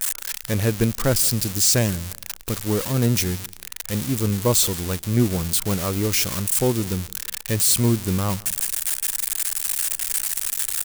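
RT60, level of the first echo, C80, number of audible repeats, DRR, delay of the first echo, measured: no reverb audible, −23.0 dB, no reverb audible, 2, no reverb audible, 171 ms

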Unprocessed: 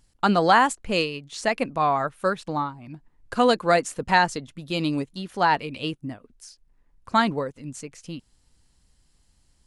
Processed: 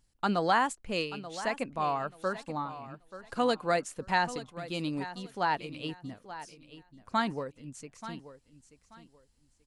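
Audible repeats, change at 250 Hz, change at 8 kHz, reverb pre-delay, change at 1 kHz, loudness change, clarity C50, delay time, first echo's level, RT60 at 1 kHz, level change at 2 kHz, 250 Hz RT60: 2, −8.5 dB, −8.5 dB, no reverb audible, −8.5 dB, −8.5 dB, no reverb audible, 883 ms, −14.0 dB, no reverb audible, −8.5 dB, no reverb audible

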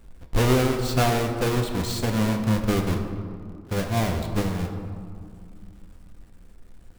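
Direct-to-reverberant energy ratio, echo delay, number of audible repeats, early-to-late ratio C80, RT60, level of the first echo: 3.5 dB, no echo audible, no echo audible, 7.5 dB, 2.3 s, no echo audible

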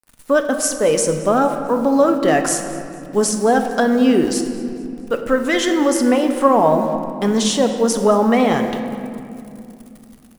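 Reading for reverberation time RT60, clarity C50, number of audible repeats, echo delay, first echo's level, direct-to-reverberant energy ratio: 2.7 s, 6.5 dB, 1, 222 ms, −19.5 dB, 5.5 dB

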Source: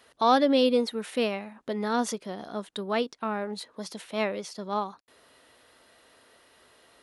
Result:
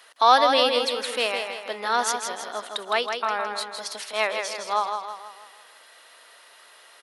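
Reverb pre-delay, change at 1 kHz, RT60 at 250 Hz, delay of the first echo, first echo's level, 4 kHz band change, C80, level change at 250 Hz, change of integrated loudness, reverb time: no reverb audible, +7.0 dB, no reverb audible, 161 ms, −6.0 dB, +9.0 dB, no reverb audible, −10.0 dB, +4.0 dB, no reverb audible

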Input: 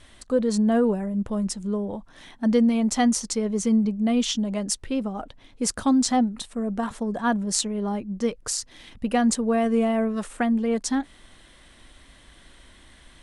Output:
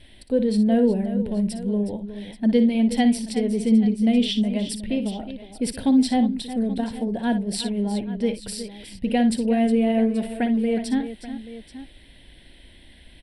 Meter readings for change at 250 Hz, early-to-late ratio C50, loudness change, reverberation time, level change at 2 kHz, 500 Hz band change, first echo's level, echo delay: +3.0 dB, no reverb audible, +2.0 dB, no reverb audible, −1.5 dB, +1.0 dB, −11.0 dB, 58 ms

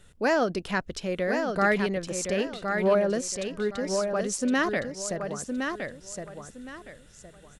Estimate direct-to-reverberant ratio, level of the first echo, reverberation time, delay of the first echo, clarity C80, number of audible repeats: no reverb audible, −5.5 dB, no reverb audible, 1,065 ms, no reverb audible, 3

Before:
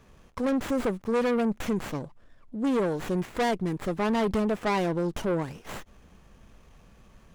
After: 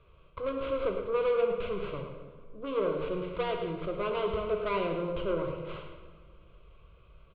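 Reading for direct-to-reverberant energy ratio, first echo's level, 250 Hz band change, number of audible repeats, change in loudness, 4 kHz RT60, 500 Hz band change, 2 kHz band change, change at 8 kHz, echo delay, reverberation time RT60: 2.5 dB, −8.5 dB, −11.5 dB, 1, −4.0 dB, 1.0 s, −1.0 dB, −6.0 dB, below −35 dB, 107 ms, 1.6 s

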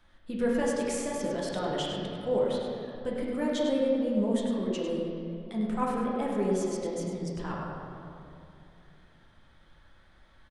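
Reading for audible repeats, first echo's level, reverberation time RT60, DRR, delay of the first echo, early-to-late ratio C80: 1, −6.5 dB, 2.8 s, −4.5 dB, 101 ms, 0.0 dB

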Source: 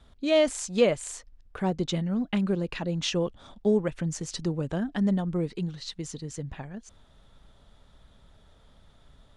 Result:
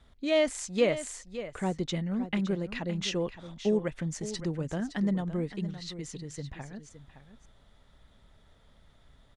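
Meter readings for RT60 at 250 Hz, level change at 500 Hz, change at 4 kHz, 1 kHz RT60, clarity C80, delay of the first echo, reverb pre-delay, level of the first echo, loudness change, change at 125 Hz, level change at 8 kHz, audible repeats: no reverb audible, −3.5 dB, −3.0 dB, no reverb audible, no reverb audible, 565 ms, no reverb audible, −12.5 dB, −3.5 dB, −3.5 dB, −3.0 dB, 1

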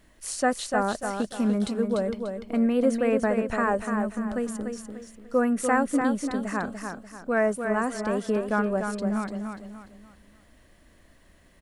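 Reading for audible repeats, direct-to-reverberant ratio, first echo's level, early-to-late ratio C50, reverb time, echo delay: 4, no reverb audible, −6.0 dB, no reverb audible, no reverb audible, 294 ms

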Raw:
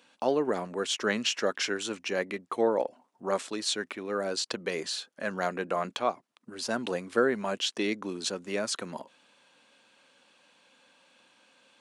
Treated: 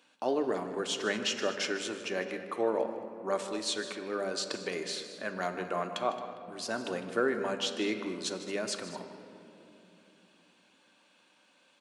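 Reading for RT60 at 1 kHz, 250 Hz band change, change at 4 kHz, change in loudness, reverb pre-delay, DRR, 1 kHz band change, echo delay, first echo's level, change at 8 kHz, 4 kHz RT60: 2.7 s, −2.5 dB, −3.0 dB, −3.0 dB, 3 ms, 5.0 dB, −2.5 dB, 154 ms, −14.0 dB, −3.0 dB, 1.5 s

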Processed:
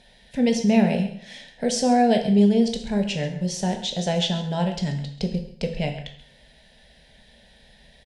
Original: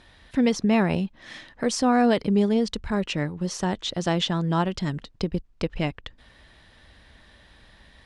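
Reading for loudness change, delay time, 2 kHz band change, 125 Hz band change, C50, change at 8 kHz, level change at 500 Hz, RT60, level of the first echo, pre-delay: +2.0 dB, 134 ms, −2.0 dB, +2.0 dB, 8.5 dB, +3.0 dB, +2.0 dB, 0.55 s, −15.5 dB, 14 ms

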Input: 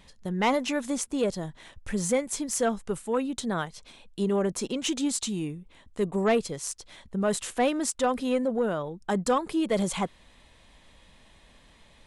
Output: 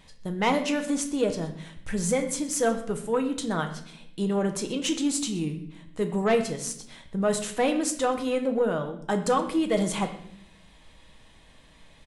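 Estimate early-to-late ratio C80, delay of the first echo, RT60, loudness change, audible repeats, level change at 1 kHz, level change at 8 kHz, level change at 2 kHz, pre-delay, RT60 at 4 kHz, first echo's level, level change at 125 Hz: 12.5 dB, 124 ms, 0.65 s, +1.0 dB, 1, +1.0 dB, +1.0 dB, +1.5 dB, 6 ms, 0.60 s, −19.5 dB, +2.0 dB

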